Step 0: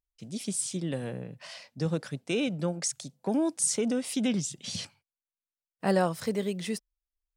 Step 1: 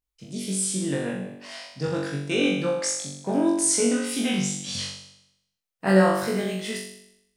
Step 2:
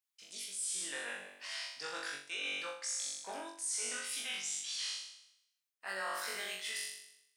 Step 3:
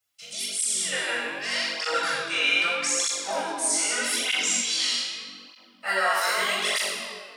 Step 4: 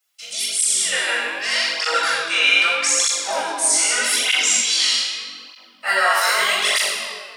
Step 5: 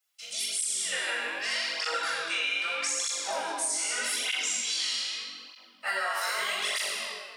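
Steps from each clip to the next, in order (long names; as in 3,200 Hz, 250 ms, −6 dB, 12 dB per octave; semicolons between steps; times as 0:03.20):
on a send: flutter between parallel walls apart 3.6 metres, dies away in 0.8 s; on the sum: dynamic equaliser 1,600 Hz, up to +6 dB, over −43 dBFS, Q 1.1
high-pass filter 1,300 Hz 12 dB per octave; reversed playback; downward compressor 5 to 1, threshold −37 dBFS, peak gain reduction 16 dB; reversed playback
convolution reverb RT60 2.7 s, pre-delay 3 ms, DRR −2 dB; through-zero flanger with one copy inverted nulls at 0.81 Hz, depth 5.8 ms; level +9 dB
high-pass filter 620 Hz 6 dB per octave; level +7.5 dB
downward compressor, threshold −20 dBFS, peak gain reduction 8.5 dB; level −7 dB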